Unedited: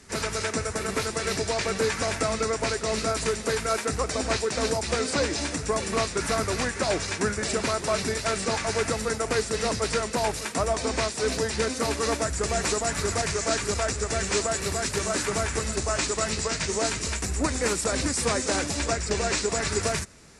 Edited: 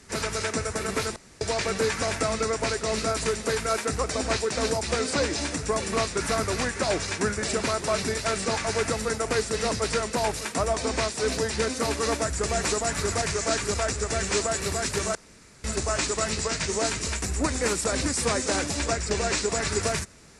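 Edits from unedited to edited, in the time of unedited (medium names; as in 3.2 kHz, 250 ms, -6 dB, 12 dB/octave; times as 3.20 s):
1.16–1.41 s: room tone
15.15–15.64 s: room tone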